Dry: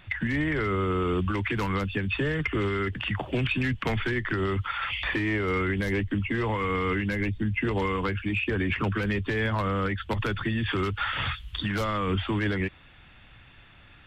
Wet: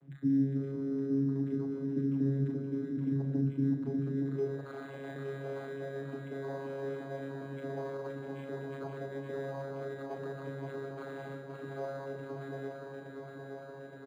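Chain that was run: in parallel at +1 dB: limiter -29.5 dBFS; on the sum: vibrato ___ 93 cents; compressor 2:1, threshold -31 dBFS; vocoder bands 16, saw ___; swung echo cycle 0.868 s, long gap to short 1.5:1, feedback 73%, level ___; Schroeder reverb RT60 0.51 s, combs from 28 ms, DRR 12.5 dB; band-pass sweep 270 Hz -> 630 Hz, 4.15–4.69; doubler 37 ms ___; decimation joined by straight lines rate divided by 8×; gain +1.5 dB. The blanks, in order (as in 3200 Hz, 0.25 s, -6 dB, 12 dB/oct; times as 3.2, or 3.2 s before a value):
4.8 Hz, 137 Hz, -6 dB, -7 dB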